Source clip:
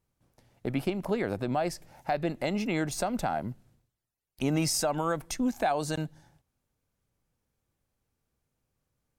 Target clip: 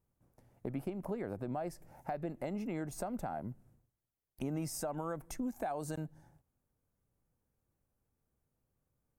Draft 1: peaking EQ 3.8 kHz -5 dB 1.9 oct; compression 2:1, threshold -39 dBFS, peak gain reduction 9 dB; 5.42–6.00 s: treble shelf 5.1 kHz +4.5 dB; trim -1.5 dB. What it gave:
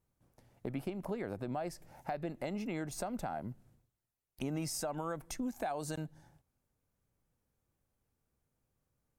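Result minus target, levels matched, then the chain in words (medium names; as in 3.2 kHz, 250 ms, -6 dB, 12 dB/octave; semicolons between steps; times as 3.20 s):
4 kHz band +6.0 dB
peaking EQ 3.8 kHz -13.5 dB 1.9 oct; compression 2:1, threshold -39 dBFS, peak gain reduction 9 dB; 5.42–6.00 s: treble shelf 5.1 kHz +4.5 dB; trim -1.5 dB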